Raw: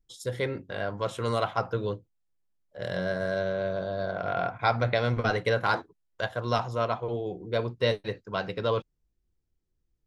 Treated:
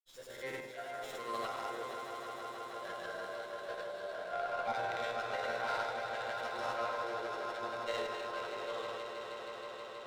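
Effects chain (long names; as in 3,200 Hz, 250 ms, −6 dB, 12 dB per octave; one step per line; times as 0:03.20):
high-pass filter 480 Hz 12 dB per octave
high-shelf EQ 8,500 Hz +11 dB
resonators tuned to a chord F2 sus4, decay 0.56 s
delay that swaps between a low-pass and a high-pass 138 ms, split 1,100 Hz, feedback 82%, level −10.5 dB
transient designer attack −5 dB, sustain +9 dB
granular cloud, pitch spread up and down by 0 semitones
on a send: echo that builds up and dies away 159 ms, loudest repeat 5, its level −11 dB
on the sum: windowed peak hold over 3 samples
level +5.5 dB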